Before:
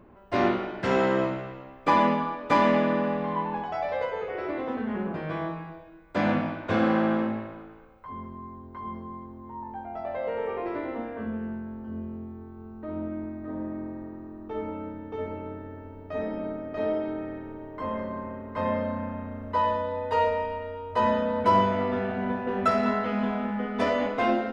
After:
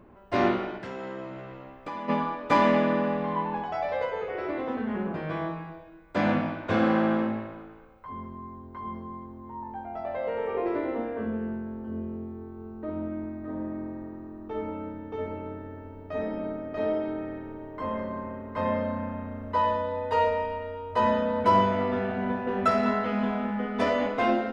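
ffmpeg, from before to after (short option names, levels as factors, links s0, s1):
-filter_complex "[0:a]asplit=3[s0][s1][s2];[s0]afade=t=out:st=0.77:d=0.02[s3];[s1]acompressor=threshold=0.0126:ratio=3:attack=3.2:release=140:knee=1:detection=peak,afade=t=in:st=0.77:d=0.02,afade=t=out:st=2.08:d=0.02[s4];[s2]afade=t=in:st=2.08:d=0.02[s5];[s3][s4][s5]amix=inputs=3:normalize=0,asettb=1/sr,asplit=3[s6][s7][s8];[s6]atrim=end=10.544[s9];[s7]atrim=start=10.54:end=12.9,asetpts=PTS-STARTPTS,afade=t=in:d=0.004:c=qsin,afade=t=out:st=2.356:d=0.004:c=qsin,equalizer=f=420:w=1.5:g=5.5[s10];[s8]atrim=start=12.896[s11];[s9][s10]acrossfade=d=0.004:c1=hsin:c2=qsin[s12];[s12][s11]acrossfade=d=0.004:c1=qsin:c2=hsin"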